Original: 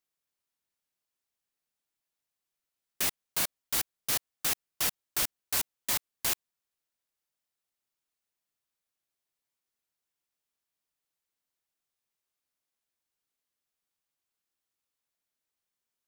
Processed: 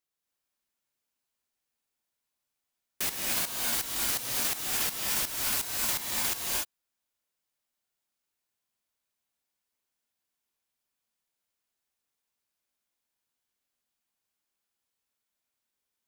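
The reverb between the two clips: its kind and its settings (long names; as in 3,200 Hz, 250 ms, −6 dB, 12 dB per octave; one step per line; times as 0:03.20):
reverb whose tail is shaped and stops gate 320 ms rising, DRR −3 dB
level −2 dB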